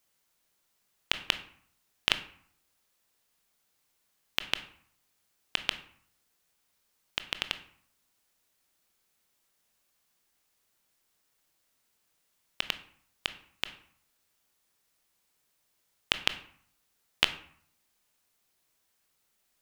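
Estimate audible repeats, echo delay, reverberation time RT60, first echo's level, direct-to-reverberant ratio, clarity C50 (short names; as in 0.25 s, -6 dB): none, none, 0.60 s, none, 10.0 dB, 13.5 dB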